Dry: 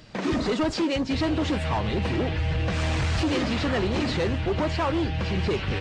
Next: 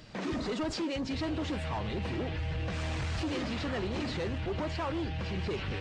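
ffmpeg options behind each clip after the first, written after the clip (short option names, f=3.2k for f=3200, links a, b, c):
-af "alimiter=level_in=2dB:limit=-24dB:level=0:latency=1:release=28,volume=-2dB,volume=-2.5dB"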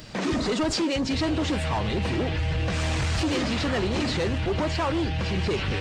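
-af "highshelf=f=7.2k:g=10,volume=8dB"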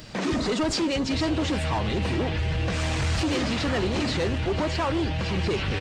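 -af "aecho=1:1:492:0.168"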